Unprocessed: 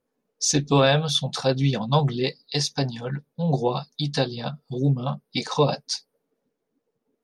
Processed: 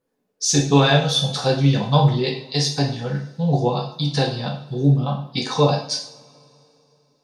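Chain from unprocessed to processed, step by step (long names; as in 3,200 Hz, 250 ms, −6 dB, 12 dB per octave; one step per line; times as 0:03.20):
coupled-rooms reverb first 0.51 s, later 3.2 s, from −26 dB, DRR −0.5 dB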